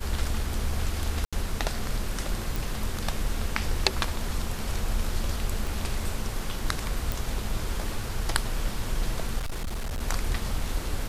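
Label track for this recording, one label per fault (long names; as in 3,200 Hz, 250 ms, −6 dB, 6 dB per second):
1.250000	1.330000	drop-out 76 ms
2.560000	2.560000	click
5.670000	5.670000	click
7.120000	7.120000	click
9.380000	10.020000	clipping −27.5 dBFS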